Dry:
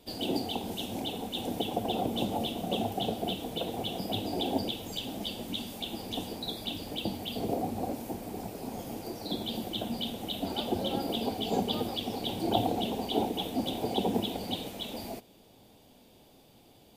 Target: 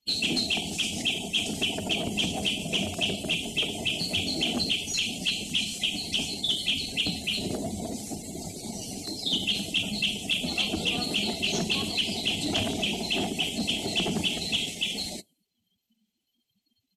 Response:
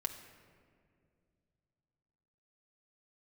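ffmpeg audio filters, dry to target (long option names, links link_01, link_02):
-filter_complex "[0:a]crystalizer=i=7:c=0,asplit=2[link_01][link_02];[link_02]asoftclip=type=tanh:threshold=-22.5dB,volume=-3.5dB[link_03];[link_01][link_03]amix=inputs=2:normalize=0,afftdn=noise_reduction=34:noise_floor=-37,asoftclip=type=hard:threshold=-18dB,asetrate=39289,aresample=44100,atempo=1.12246,lowpass=frequency=7500:width=0.5412,lowpass=frequency=7500:width=1.3066,equalizer=frequency=560:width_type=o:width=0.73:gain=-9,volume=-2dB"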